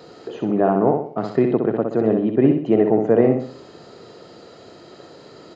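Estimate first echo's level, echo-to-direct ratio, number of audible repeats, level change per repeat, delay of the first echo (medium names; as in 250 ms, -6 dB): -5.0 dB, -4.0 dB, 4, -7.5 dB, 63 ms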